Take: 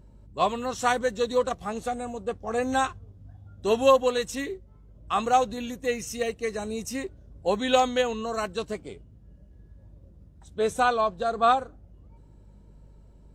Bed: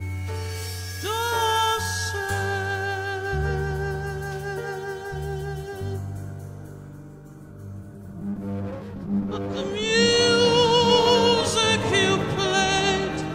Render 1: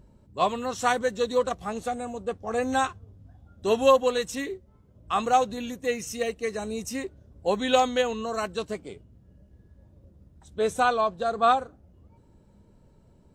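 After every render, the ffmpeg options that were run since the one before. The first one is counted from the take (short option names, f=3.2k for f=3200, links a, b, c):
-af "bandreject=f=50:t=h:w=4,bandreject=f=100:t=h:w=4,bandreject=f=150:t=h:w=4"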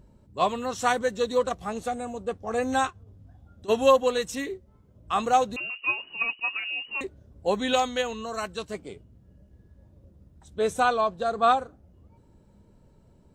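-filter_complex "[0:a]asplit=3[a][b][c];[a]afade=t=out:st=2.89:d=0.02[d];[b]acompressor=threshold=-44dB:ratio=5:attack=3.2:release=140:knee=1:detection=peak,afade=t=in:st=2.89:d=0.02,afade=t=out:st=3.68:d=0.02[e];[c]afade=t=in:st=3.68:d=0.02[f];[d][e][f]amix=inputs=3:normalize=0,asettb=1/sr,asplit=3[g][h][i];[g]atrim=end=5.564[j];[h]atrim=start=5.56:end=7.01,asetpts=PTS-STARTPTS,afade=t=in:d=0.004:c=qsin,afade=t=out:st=1.446:d=0.004:c=qsin,lowpass=f=2.6k:t=q:w=0.5098,lowpass=f=2.6k:t=q:w=0.6013,lowpass=f=2.6k:t=q:w=0.9,lowpass=f=2.6k:t=q:w=2.563,afreqshift=-3000[k];[i]atrim=start=7.006[l];[j][k]acrossfade=d=0.004:c1=hsin:c2=qsin[m];[m][l]acrossfade=d=0.004:c1=qsin:c2=hsin,asettb=1/sr,asplit=3[n][o][p];[n]atrim=end=7.734[q];[o]atrim=start=7.73:end=8.74,asetpts=PTS-STARTPTS,afade=t=in:d=0.004:c=qsin,afade=t=out:st=1.006:d=0.004:c=qsin,equalizer=f=350:t=o:w=2.6:g=-4.5[r];[p]atrim=start=8.736[s];[q][r]acrossfade=d=0.004:c1=hsin:c2=qsin[t];[t][s]acrossfade=d=0.004:c1=qsin:c2=hsin"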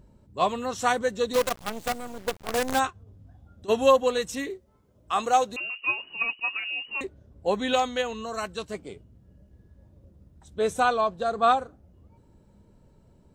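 -filter_complex "[0:a]asplit=3[a][b][c];[a]afade=t=out:st=1.33:d=0.02[d];[b]acrusher=bits=5:dc=4:mix=0:aa=0.000001,afade=t=in:st=1.33:d=0.02,afade=t=out:st=2.78:d=0.02[e];[c]afade=t=in:st=2.78:d=0.02[f];[d][e][f]amix=inputs=3:normalize=0,asettb=1/sr,asplit=3[g][h][i];[g]atrim=end=4.504[j];[h]atrim=start=4.5:end=5.81,asetpts=PTS-STARTPTS,afade=t=in:d=0.004:c=qsin,afade=t=out:st=1.306:d=0.004:c=qsin,bass=f=250:g=-8,treble=f=4k:g=3[k];[i]atrim=start=5.806[l];[j][k]acrossfade=d=0.004:c1=hsin:c2=qsin[m];[m][l]acrossfade=d=0.004:c1=qsin:c2=hsin,asettb=1/sr,asplit=3[n][o][p];[n]atrim=end=7.064[q];[o]atrim=start=7.06:end=8.15,asetpts=PTS-STARTPTS,afade=t=in:d=0.004:c=qsin,afade=t=out:st=1.086:d=0.004:c=qsin,bass=f=250:g=-1,treble=f=4k:g=-3[r];[p]atrim=start=8.146[s];[q][r]acrossfade=d=0.004:c1=hsin:c2=qsin[t];[t][s]acrossfade=d=0.004:c1=qsin:c2=hsin"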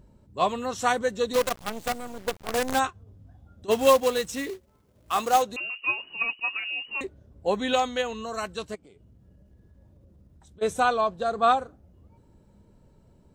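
-filter_complex "[0:a]asplit=3[a][b][c];[a]afade=t=out:st=3.7:d=0.02[d];[b]acrusher=bits=3:mode=log:mix=0:aa=0.000001,afade=t=in:st=3.7:d=0.02,afade=t=out:st=5.41:d=0.02[e];[c]afade=t=in:st=5.41:d=0.02[f];[d][e][f]amix=inputs=3:normalize=0,asplit=3[g][h][i];[g]afade=t=out:st=8.74:d=0.02[j];[h]acompressor=threshold=-50dB:ratio=6:attack=3.2:release=140:knee=1:detection=peak,afade=t=in:st=8.74:d=0.02,afade=t=out:st=10.61:d=0.02[k];[i]afade=t=in:st=10.61:d=0.02[l];[j][k][l]amix=inputs=3:normalize=0"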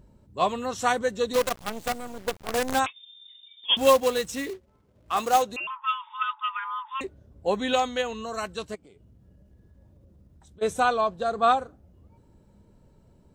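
-filter_complex "[0:a]asettb=1/sr,asplit=3[a][b][c];[a]atrim=end=2.864[d];[b]atrim=start=2.86:end=3.77,asetpts=PTS-STARTPTS,afade=t=in:d=0.004:c=qsin,afade=t=out:st=0.906:d=0.004:c=qsin,lowpass=f=3.1k:t=q:w=0.5098,lowpass=f=3.1k:t=q:w=0.6013,lowpass=f=3.1k:t=q:w=0.9,lowpass=f=3.1k:t=q:w=2.563,afreqshift=-3700[e];[c]atrim=start=3.766[f];[d][e]acrossfade=d=0.004:c1=hsin:c2=qsin[g];[g][f]acrossfade=d=0.004:c1=qsin:c2=hsin,asettb=1/sr,asplit=3[h][i][j];[h]atrim=end=4.534[k];[i]atrim=start=4.53:end=5.17,asetpts=PTS-STARTPTS,afade=t=in:d=0.004:c=qsin,afade=t=out:st=0.636:d=0.004:c=qsin,lowpass=f=3.6k:p=1[l];[j]atrim=start=5.166[m];[k][l]acrossfade=d=0.004:c1=hsin:c2=qsin[n];[n][m]acrossfade=d=0.004:c1=qsin:c2=hsin,asettb=1/sr,asplit=3[o][p][q];[o]atrim=end=5.674[r];[p]atrim=start=5.67:end=7,asetpts=PTS-STARTPTS,afade=t=in:d=0.004:c=qsin,afade=t=out:st=1.326:d=0.004:c=qsin,lowpass=f=3.2k:t=q:w=0.5098,lowpass=f=3.2k:t=q:w=0.6013,lowpass=f=3.2k:t=q:w=0.9,lowpass=f=3.2k:t=q:w=2.563,afreqshift=-3800[s];[q]atrim=start=6.996[t];[r][s]acrossfade=d=0.004:c1=hsin:c2=qsin[u];[u][t]acrossfade=d=0.004:c1=qsin:c2=hsin"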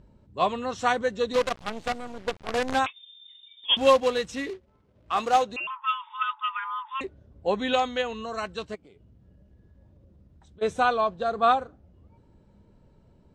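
-af "lowpass=3.5k,aemphasis=mode=production:type=cd"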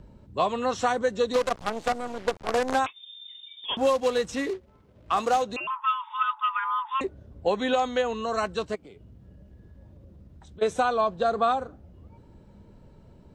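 -filter_complex "[0:a]asplit=2[a][b];[b]alimiter=limit=-17.5dB:level=0:latency=1:release=205,volume=0dB[c];[a][c]amix=inputs=2:normalize=0,acrossover=split=280|1600|4800[d][e][f][g];[d]acompressor=threshold=-39dB:ratio=4[h];[e]acompressor=threshold=-21dB:ratio=4[i];[f]acompressor=threshold=-41dB:ratio=4[j];[g]acompressor=threshold=-40dB:ratio=4[k];[h][i][j][k]amix=inputs=4:normalize=0"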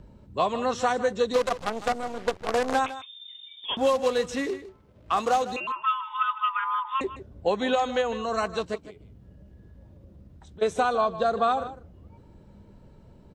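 -af "aecho=1:1:155:0.2"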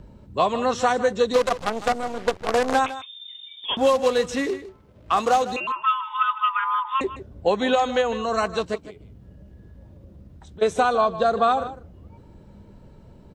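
-af "volume=4dB"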